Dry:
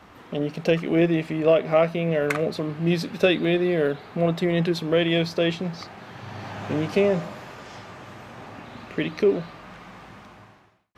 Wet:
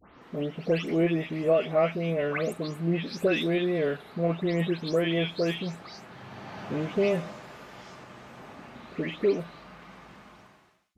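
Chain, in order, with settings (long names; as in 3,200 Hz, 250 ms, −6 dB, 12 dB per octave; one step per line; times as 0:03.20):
every frequency bin delayed by itself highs late, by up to 216 ms
level −4.5 dB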